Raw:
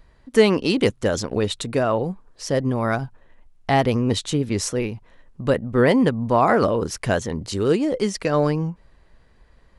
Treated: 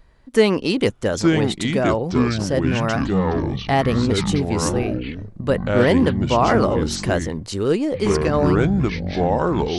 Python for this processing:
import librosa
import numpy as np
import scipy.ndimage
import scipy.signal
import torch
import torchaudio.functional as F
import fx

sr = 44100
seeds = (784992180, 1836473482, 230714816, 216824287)

y = fx.echo_pitch(x, sr, ms=745, semitones=-5, count=3, db_per_echo=-3.0)